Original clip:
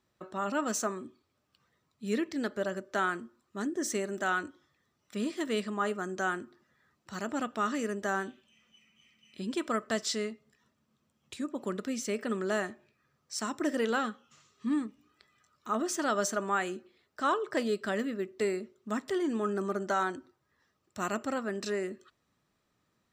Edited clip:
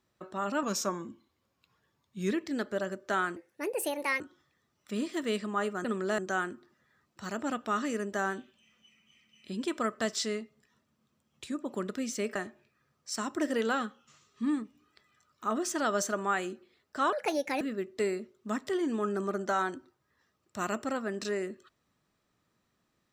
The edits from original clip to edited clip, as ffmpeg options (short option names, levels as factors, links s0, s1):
-filter_complex "[0:a]asplit=10[s0][s1][s2][s3][s4][s5][s6][s7][s8][s9];[s0]atrim=end=0.634[s10];[s1]atrim=start=0.63:end=2.16,asetpts=PTS-STARTPTS,asetrate=40131,aresample=44100,atrim=end_sample=74146,asetpts=PTS-STARTPTS[s11];[s2]atrim=start=2.156:end=3.214[s12];[s3]atrim=start=3.21:end=4.44,asetpts=PTS-STARTPTS,asetrate=64386,aresample=44100[s13];[s4]atrim=start=4.436:end=6.082[s14];[s5]atrim=start=12.248:end=12.592[s15];[s6]atrim=start=6.078:end=12.252[s16];[s7]atrim=start=12.588:end=17.364[s17];[s8]atrim=start=17.36:end=18.02,asetpts=PTS-STARTPTS,asetrate=59976,aresample=44100,atrim=end_sample=21401,asetpts=PTS-STARTPTS[s18];[s9]atrim=start=18.016[s19];[s10][s11]acrossfade=d=0.004:c1=hsin:c2=hsin[s20];[s20][s12]acrossfade=d=0.004:c1=hsin:c2=hsin[s21];[s21][s13]acrossfade=d=0.004:c1=hsin:c2=hsin[s22];[s22][s14]acrossfade=d=0.004:c1=hsin:c2=hsin[s23];[s23][s15]acrossfade=d=0.004:c1=hsin:c2=hsin[s24];[s24][s16]acrossfade=d=0.004:c1=hsin:c2=hsin[s25];[s25][s17]acrossfade=d=0.004:c1=hsin:c2=hsin[s26];[s26][s18]acrossfade=d=0.004:c1=hsin:c2=hsin[s27];[s27][s19]acrossfade=d=0.004:c1=hsin:c2=hsin"